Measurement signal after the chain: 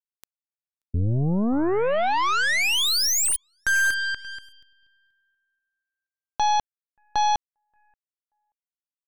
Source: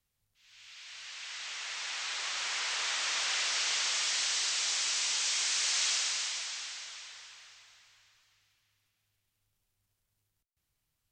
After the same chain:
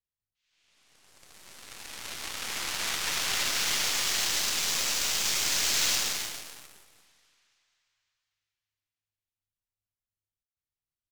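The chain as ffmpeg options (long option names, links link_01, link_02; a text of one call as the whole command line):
ffmpeg -i in.wav -af "aecho=1:1:581|1162:0.0708|0.0149,aeval=exprs='0.1*(cos(1*acos(clip(val(0)/0.1,-1,1)))-cos(1*PI/2))+0.0178*(cos(4*acos(clip(val(0)/0.1,-1,1)))-cos(4*PI/2))+0.000708*(cos(6*acos(clip(val(0)/0.1,-1,1)))-cos(6*PI/2))+0.0158*(cos(7*acos(clip(val(0)/0.1,-1,1)))-cos(7*PI/2))':channel_layout=same,volume=3.5dB" out.wav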